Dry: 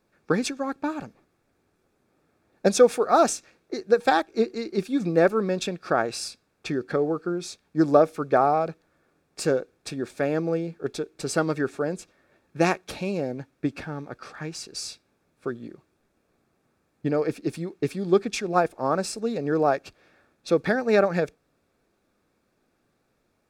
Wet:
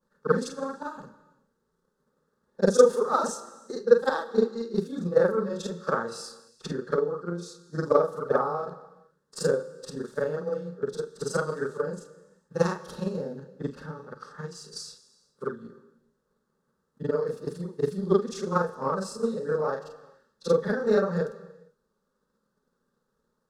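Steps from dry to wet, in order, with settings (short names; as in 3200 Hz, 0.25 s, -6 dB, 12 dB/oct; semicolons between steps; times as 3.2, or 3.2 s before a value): short-time reversal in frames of 0.104 s; high shelf 8000 Hz -7.5 dB; fixed phaser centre 470 Hz, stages 8; non-linear reverb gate 0.48 s falling, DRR 11.5 dB; transient shaper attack +7 dB, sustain 0 dB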